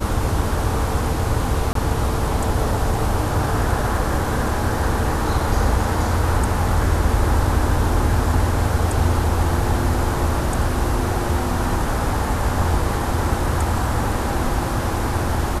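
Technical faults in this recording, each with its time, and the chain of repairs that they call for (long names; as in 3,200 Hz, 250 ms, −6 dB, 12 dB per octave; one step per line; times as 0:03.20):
0:01.73–0:01.75: drop-out 23 ms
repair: repair the gap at 0:01.73, 23 ms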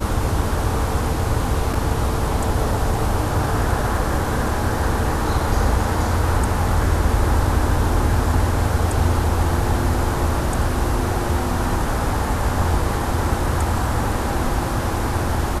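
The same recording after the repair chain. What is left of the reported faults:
none of them is left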